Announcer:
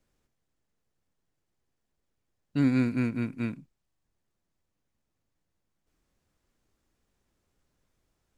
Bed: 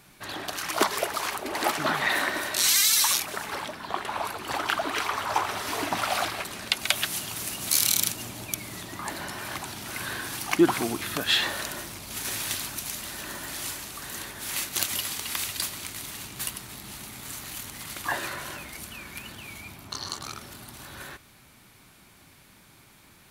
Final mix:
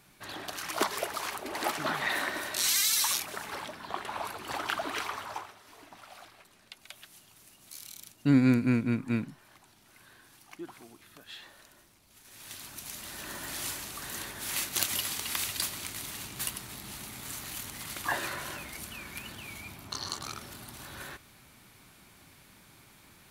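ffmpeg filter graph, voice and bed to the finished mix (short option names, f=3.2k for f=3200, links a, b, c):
-filter_complex "[0:a]adelay=5700,volume=2dB[a];[1:a]volume=16dB,afade=t=out:st=4.97:d=0.58:silence=0.125893,afade=t=in:st=12.29:d=1.29:silence=0.0841395[b];[a][b]amix=inputs=2:normalize=0"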